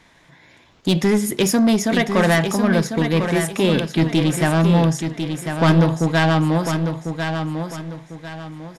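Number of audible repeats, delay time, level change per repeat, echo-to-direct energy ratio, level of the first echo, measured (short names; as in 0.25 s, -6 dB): 3, 1.048 s, -9.5 dB, -6.5 dB, -7.0 dB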